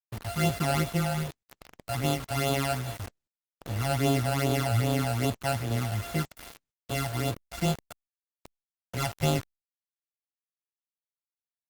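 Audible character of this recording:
a buzz of ramps at a fixed pitch in blocks of 64 samples
phaser sweep stages 12, 2.5 Hz, lowest notch 340–1,900 Hz
a quantiser's noise floor 6 bits, dither none
Opus

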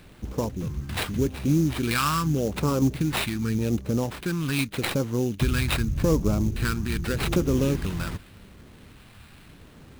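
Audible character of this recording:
phaser sweep stages 2, 0.84 Hz, lowest notch 480–1,800 Hz
aliases and images of a low sample rate 6,400 Hz, jitter 20%

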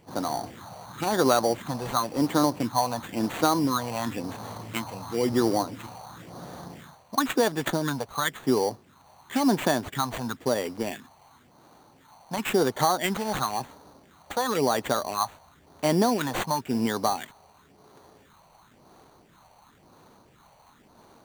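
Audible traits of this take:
phaser sweep stages 4, 0.96 Hz, lowest notch 300–4,300 Hz
aliases and images of a low sample rate 5,200 Hz, jitter 0%

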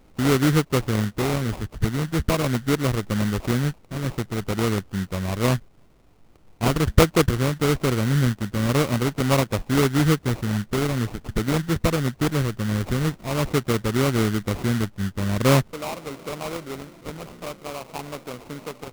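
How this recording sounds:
phaser sweep stages 6, 0.45 Hz, lowest notch 780–2,300 Hz
aliases and images of a low sample rate 1,700 Hz, jitter 20%

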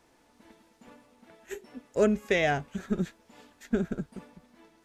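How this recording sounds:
background noise floor −65 dBFS
spectral slope −5.0 dB per octave

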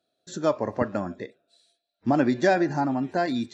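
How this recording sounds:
background noise floor −81 dBFS
spectral slope −5.5 dB per octave

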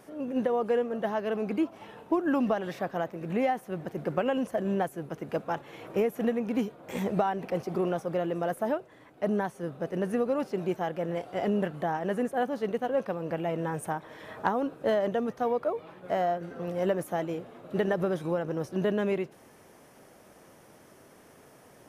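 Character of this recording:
background noise floor −56 dBFS
spectral slope −4.0 dB per octave

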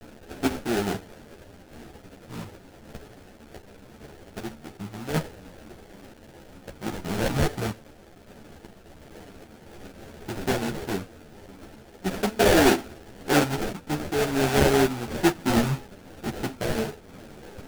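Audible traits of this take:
a quantiser's noise floor 8 bits, dither triangular
sample-and-hold tremolo
aliases and images of a low sample rate 1,100 Hz, jitter 20%
a shimmering, thickened sound

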